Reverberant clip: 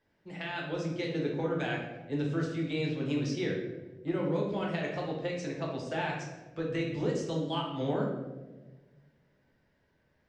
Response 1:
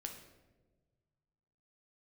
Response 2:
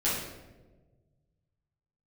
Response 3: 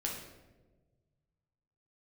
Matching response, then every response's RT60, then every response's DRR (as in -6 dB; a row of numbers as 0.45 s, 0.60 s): 3; 1.3 s, 1.3 s, 1.3 s; 3.0 dB, -10.5 dB, -2.5 dB